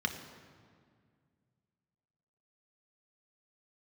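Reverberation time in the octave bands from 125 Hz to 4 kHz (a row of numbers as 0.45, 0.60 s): 3.0, 2.7, 2.1, 1.9, 1.7, 1.4 s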